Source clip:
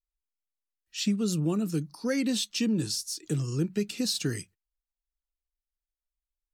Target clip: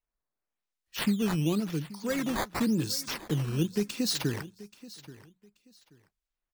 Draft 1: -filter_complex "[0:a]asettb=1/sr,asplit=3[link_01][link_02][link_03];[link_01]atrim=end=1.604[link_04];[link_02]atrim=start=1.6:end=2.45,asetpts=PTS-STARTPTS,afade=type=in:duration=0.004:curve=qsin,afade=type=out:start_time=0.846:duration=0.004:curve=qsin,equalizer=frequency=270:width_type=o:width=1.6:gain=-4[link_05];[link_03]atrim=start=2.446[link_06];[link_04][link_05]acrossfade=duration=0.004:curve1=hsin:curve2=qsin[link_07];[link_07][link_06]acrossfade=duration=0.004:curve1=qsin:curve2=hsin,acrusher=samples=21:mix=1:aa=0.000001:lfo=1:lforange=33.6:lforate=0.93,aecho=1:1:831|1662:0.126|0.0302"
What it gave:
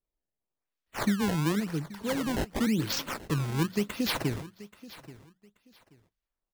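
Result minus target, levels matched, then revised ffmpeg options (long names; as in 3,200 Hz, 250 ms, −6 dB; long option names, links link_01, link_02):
sample-and-hold swept by an LFO: distortion +5 dB
-filter_complex "[0:a]asettb=1/sr,asplit=3[link_01][link_02][link_03];[link_01]atrim=end=1.604[link_04];[link_02]atrim=start=1.6:end=2.45,asetpts=PTS-STARTPTS,afade=type=in:duration=0.004:curve=qsin,afade=type=out:start_time=0.846:duration=0.004:curve=qsin,equalizer=frequency=270:width_type=o:width=1.6:gain=-4[link_05];[link_03]atrim=start=2.446[link_06];[link_04][link_05]acrossfade=duration=0.004:curve1=hsin:curve2=qsin[link_07];[link_07][link_06]acrossfade=duration=0.004:curve1=qsin:curve2=hsin,acrusher=samples=9:mix=1:aa=0.000001:lfo=1:lforange=14.4:lforate=0.93,aecho=1:1:831|1662:0.126|0.0302"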